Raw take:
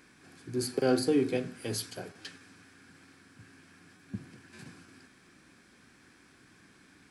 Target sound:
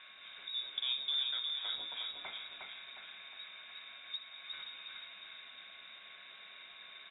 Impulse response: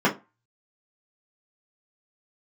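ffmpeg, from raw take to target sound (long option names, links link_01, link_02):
-filter_complex "[0:a]lowpass=frequency=3300:width_type=q:width=0.5098,lowpass=frequency=3300:width_type=q:width=0.6013,lowpass=frequency=3300:width_type=q:width=0.9,lowpass=frequency=3300:width_type=q:width=2.563,afreqshift=-3900,asplit=2[link_01][link_02];[1:a]atrim=start_sample=2205,lowshelf=frequency=130:gain=-8.5[link_03];[link_02][link_03]afir=irnorm=-1:irlink=0,volume=-21.5dB[link_04];[link_01][link_04]amix=inputs=2:normalize=0,acompressor=threshold=-51dB:ratio=2,aecho=1:1:359|718|1077|1436|1795|2154:0.631|0.297|0.139|0.0655|0.0308|0.0145,aeval=exprs='val(0)+0.000316*sin(2*PI*1100*n/s)':channel_layout=same,volume=4dB"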